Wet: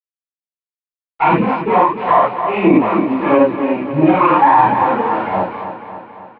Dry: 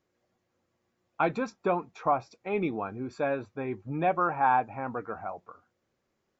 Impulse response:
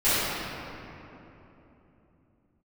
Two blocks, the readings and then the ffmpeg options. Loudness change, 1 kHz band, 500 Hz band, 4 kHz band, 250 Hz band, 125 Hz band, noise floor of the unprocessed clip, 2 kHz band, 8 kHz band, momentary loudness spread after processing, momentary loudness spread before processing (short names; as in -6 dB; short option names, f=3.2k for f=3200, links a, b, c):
+16.0 dB, +16.5 dB, +15.0 dB, +17.5 dB, +19.5 dB, +15.0 dB, -79 dBFS, +13.5 dB, n/a, 12 LU, 11 LU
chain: -filter_complex "[0:a]aeval=exprs='if(lt(val(0),0),0.251*val(0),val(0))':c=same,agate=range=-33dB:threshold=-52dB:ratio=3:detection=peak,acontrast=60,aphaser=in_gain=1:out_gain=1:delay=4.5:decay=0.76:speed=1.5:type=sinusoidal,aresample=11025,aeval=exprs='val(0)*gte(abs(val(0)),0.0168)':c=same,aresample=44100,highpass=170,equalizer=f=180:t=q:w=4:g=8,equalizer=f=290:t=q:w=4:g=3,equalizer=f=970:t=q:w=4:g=8,equalizer=f=1.5k:t=q:w=4:g=-7,lowpass=f=2.8k:w=0.5412,lowpass=f=2.8k:w=1.3066,aecho=1:1:276|552|828|1104|1380|1656|1932:0.282|0.163|0.0948|0.055|0.0319|0.0185|0.0107[a];[1:a]atrim=start_sample=2205,afade=t=out:st=0.17:d=0.01,atrim=end_sample=7938[b];[a][b]afir=irnorm=-1:irlink=0,alimiter=level_in=-4.5dB:limit=-1dB:release=50:level=0:latency=1,volume=-1dB"